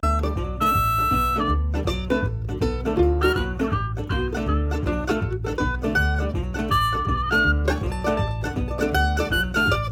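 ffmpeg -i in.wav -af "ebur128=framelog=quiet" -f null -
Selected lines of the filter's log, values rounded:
Integrated loudness:
  I:         -22.9 LUFS
  Threshold: -32.9 LUFS
Loudness range:
  LRA:         1.8 LU
  Threshold: -43.1 LUFS
  LRA low:   -23.9 LUFS
  LRA high:  -22.1 LUFS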